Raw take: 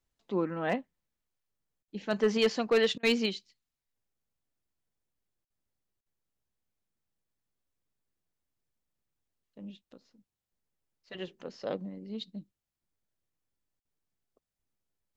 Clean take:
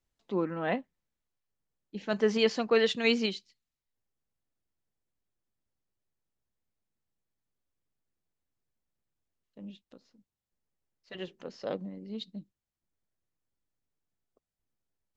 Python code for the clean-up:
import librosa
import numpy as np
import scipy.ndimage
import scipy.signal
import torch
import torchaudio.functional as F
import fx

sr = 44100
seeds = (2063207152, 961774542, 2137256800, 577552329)

y = fx.fix_declip(x, sr, threshold_db=-18.0)
y = fx.fix_interpolate(y, sr, at_s=(1.83, 2.98, 5.45, 6.01, 13.8), length_ms=50.0)